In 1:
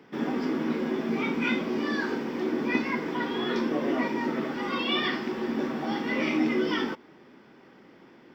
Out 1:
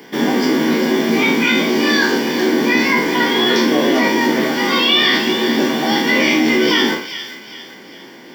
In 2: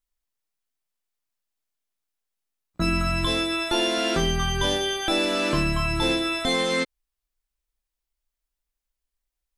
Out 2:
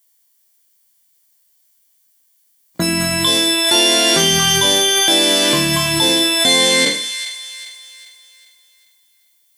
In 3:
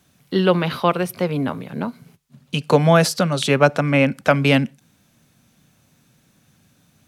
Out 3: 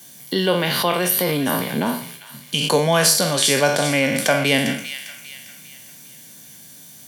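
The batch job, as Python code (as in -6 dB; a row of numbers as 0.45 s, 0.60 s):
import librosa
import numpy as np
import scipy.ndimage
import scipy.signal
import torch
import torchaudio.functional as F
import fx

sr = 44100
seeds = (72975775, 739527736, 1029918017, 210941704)

p1 = fx.spec_trails(x, sr, decay_s=0.47)
p2 = scipy.signal.sosfilt(scipy.signal.butter(2, 110.0, 'highpass', fs=sr, output='sos'), p1)
p3 = F.preemphasis(torch.from_numpy(p2), 0.8).numpy()
p4 = fx.over_compress(p3, sr, threshold_db=-39.0, ratio=-1.0)
p5 = p3 + (p4 * librosa.db_to_amplitude(1.0))
p6 = fx.notch_comb(p5, sr, f0_hz=1300.0)
p7 = p6 + fx.echo_wet_highpass(p6, sr, ms=400, feedback_pct=41, hz=1900.0, wet_db=-9.5, dry=0)
y = librosa.util.normalize(p7) * 10.0 ** (-2 / 20.0)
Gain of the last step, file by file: +19.0 dB, +16.5 dB, +8.5 dB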